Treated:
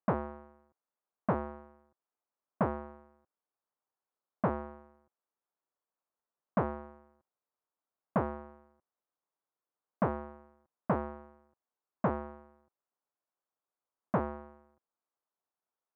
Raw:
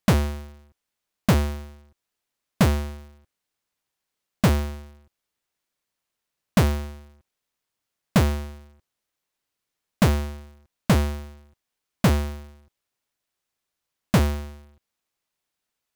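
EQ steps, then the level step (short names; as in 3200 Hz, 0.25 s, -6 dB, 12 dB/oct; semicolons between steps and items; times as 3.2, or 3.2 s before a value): HPF 290 Hz 6 dB/oct; LPF 1200 Hz 24 dB/oct; tilt +2 dB/oct; -3.0 dB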